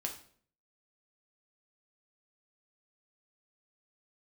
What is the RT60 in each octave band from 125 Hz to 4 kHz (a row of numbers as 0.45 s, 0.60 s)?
0.70 s, 0.65 s, 0.60 s, 0.50 s, 0.45 s, 0.45 s